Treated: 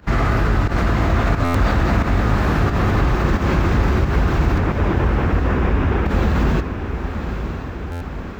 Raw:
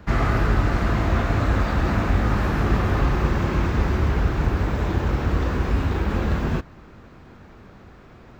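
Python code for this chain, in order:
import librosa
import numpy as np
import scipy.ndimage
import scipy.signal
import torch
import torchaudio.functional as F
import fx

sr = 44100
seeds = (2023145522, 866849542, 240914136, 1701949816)

p1 = fx.over_compress(x, sr, threshold_db=-24.0, ratio=-1.0)
p2 = x + (p1 * librosa.db_to_amplitude(-2.0))
p3 = fx.savgol(p2, sr, points=25, at=(4.58, 6.06))
p4 = fx.volume_shaper(p3, sr, bpm=89, per_beat=1, depth_db=-15, release_ms=103.0, shape='fast start')
p5 = p4 + fx.echo_diffused(p4, sr, ms=977, feedback_pct=60, wet_db=-8.5, dry=0)
y = fx.buffer_glitch(p5, sr, at_s=(1.44, 7.91), block=512, repeats=8)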